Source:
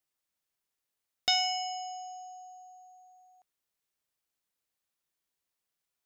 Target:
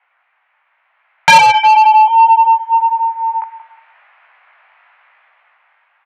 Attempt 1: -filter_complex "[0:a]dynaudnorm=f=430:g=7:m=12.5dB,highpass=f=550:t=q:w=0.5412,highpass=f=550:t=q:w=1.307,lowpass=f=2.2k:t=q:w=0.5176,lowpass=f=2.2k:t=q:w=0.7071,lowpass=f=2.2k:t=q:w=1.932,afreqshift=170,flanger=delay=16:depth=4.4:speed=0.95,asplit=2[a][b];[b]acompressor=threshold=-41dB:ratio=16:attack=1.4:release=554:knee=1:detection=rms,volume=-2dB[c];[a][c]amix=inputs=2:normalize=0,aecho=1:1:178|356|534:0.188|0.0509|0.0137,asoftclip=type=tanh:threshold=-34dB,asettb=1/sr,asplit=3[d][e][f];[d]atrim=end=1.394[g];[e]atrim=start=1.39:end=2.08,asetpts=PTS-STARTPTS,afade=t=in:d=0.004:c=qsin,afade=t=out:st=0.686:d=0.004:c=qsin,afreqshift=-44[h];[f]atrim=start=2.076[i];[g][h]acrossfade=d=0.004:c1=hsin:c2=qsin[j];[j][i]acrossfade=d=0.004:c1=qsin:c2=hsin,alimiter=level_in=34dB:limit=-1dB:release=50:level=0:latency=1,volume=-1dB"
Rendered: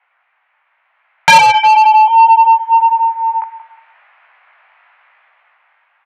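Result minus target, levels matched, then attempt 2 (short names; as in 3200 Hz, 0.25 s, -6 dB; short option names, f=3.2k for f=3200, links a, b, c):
compressor: peak gain reduction -10.5 dB
-filter_complex "[0:a]dynaudnorm=f=430:g=7:m=12.5dB,highpass=f=550:t=q:w=0.5412,highpass=f=550:t=q:w=1.307,lowpass=f=2.2k:t=q:w=0.5176,lowpass=f=2.2k:t=q:w=0.7071,lowpass=f=2.2k:t=q:w=1.932,afreqshift=170,flanger=delay=16:depth=4.4:speed=0.95,asplit=2[a][b];[b]acompressor=threshold=-52dB:ratio=16:attack=1.4:release=554:knee=1:detection=rms,volume=-2dB[c];[a][c]amix=inputs=2:normalize=0,aecho=1:1:178|356|534:0.188|0.0509|0.0137,asoftclip=type=tanh:threshold=-34dB,asettb=1/sr,asplit=3[d][e][f];[d]atrim=end=1.394[g];[e]atrim=start=1.39:end=2.08,asetpts=PTS-STARTPTS,afade=t=in:d=0.004:c=qsin,afade=t=out:st=0.686:d=0.004:c=qsin,afreqshift=-44[h];[f]atrim=start=2.076[i];[g][h]acrossfade=d=0.004:c1=hsin:c2=qsin[j];[j][i]acrossfade=d=0.004:c1=qsin:c2=hsin,alimiter=level_in=34dB:limit=-1dB:release=50:level=0:latency=1,volume=-1dB"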